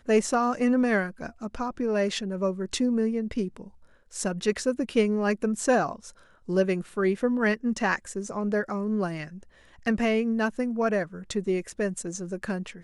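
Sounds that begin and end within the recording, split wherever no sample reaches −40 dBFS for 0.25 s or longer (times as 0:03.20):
0:04.13–0:06.10
0:06.48–0:09.43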